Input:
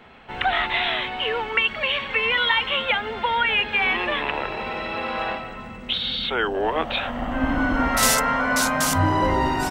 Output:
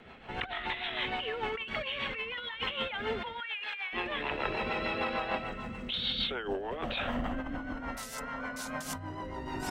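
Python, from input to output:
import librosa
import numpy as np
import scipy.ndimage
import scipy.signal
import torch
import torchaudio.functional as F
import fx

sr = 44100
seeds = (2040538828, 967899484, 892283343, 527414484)

y = fx.highpass(x, sr, hz=1100.0, slope=12, at=(3.4, 3.93))
y = fx.over_compress(y, sr, threshold_db=-28.0, ratio=-1.0)
y = fx.rotary(y, sr, hz=6.7)
y = F.gain(torch.from_numpy(y), -5.5).numpy()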